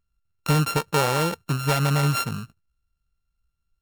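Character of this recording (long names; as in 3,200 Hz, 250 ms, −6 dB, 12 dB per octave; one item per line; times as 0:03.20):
a buzz of ramps at a fixed pitch in blocks of 32 samples
AAC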